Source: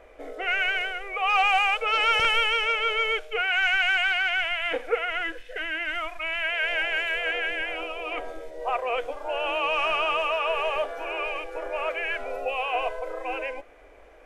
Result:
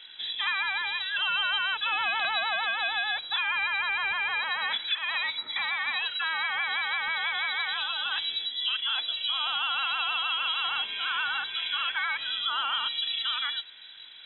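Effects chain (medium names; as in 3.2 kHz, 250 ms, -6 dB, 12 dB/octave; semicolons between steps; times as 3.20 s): 10.64–12.88 s: tilt shelf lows -5 dB, about 910 Hz; compression, threshold -29 dBFS, peak gain reduction 10.5 dB; frequency inversion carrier 3.9 kHz; trim +3 dB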